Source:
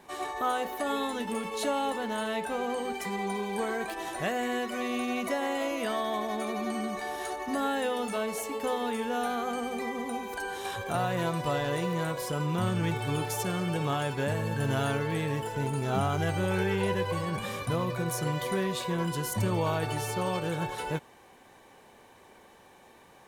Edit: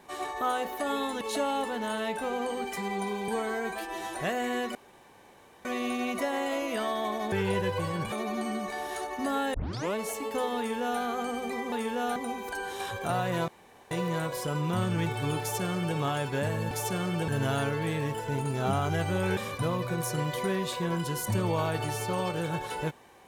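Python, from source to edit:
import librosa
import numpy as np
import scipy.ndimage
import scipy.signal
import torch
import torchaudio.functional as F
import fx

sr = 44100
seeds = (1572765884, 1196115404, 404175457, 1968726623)

y = fx.edit(x, sr, fx.cut(start_s=1.21, length_s=0.28),
    fx.stretch_span(start_s=3.56, length_s=0.58, factor=1.5),
    fx.insert_room_tone(at_s=4.74, length_s=0.9),
    fx.tape_start(start_s=7.83, length_s=0.41),
    fx.duplicate(start_s=8.86, length_s=0.44, to_s=10.01),
    fx.room_tone_fill(start_s=11.33, length_s=0.43),
    fx.duplicate(start_s=13.25, length_s=0.57, to_s=14.56),
    fx.move(start_s=16.65, length_s=0.8, to_s=6.41), tone=tone)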